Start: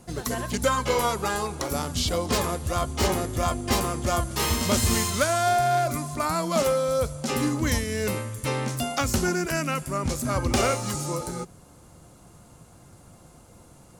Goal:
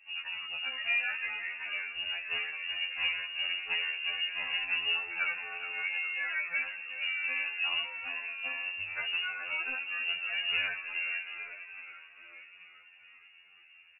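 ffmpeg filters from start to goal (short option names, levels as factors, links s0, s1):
-filter_complex "[0:a]aemphasis=mode=reproduction:type=75fm,asplit=2[s0][s1];[s1]asplit=7[s2][s3][s4][s5][s6][s7][s8];[s2]adelay=414,afreqshift=51,volume=0.316[s9];[s3]adelay=828,afreqshift=102,volume=0.193[s10];[s4]adelay=1242,afreqshift=153,volume=0.117[s11];[s5]adelay=1656,afreqshift=204,volume=0.0716[s12];[s6]adelay=2070,afreqshift=255,volume=0.0437[s13];[s7]adelay=2484,afreqshift=306,volume=0.0266[s14];[s8]adelay=2898,afreqshift=357,volume=0.0162[s15];[s9][s10][s11][s12][s13][s14][s15]amix=inputs=7:normalize=0[s16];[s0][s16]amix=inputs=2:normalize=0,lowpass=f=2500:t=q:w=0.5098,lowpass=f=2500:t=q:w=0.6013,lowpass=f=2500:t=q:w=0.9,lowpass=f=2500:t=q:w=2.563,afreqshift=-2900,afftfilt=real='re*2*eq(mod(b,4),0)':imag='im*2*eq(mod(b,4),0)':win_size=2048:overlap=0.75,volume=0.422"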